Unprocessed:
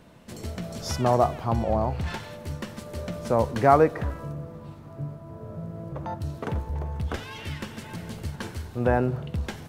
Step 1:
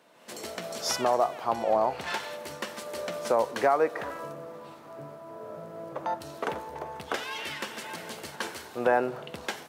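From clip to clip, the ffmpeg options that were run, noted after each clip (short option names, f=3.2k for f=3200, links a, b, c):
-af "highpass=460,alimiter=limit=-17.5dB:level=0:latency=1:release=407,dynaudnorm=f=130:g=3:m=8dB,volume=-3.5dB"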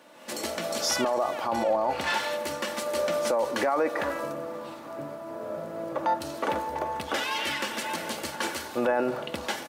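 -af "aecho=1:1:3.5:0.43,alimiter=limit=-23dB:level=0:latency=1:release=24,volume=6dB"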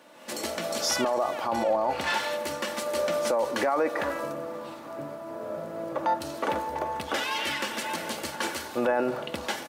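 -af anull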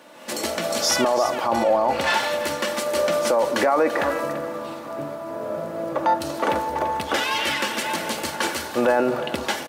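-af "aecho=1:1:338:0.224,volume=6dB"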